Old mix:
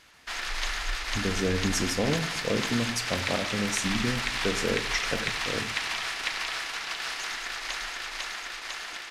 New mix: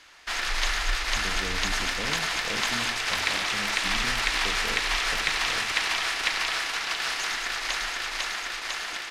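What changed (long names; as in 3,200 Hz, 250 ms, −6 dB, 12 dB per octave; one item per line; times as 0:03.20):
speech −10.5 dB
background +4.5 dB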